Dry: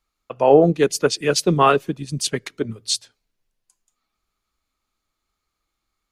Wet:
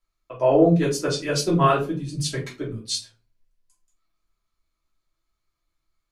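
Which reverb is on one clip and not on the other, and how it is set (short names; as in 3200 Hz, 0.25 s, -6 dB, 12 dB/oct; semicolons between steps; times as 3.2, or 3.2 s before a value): shoebox room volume 140 m³, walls furnished, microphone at 2.9 m; gain -10.5 dB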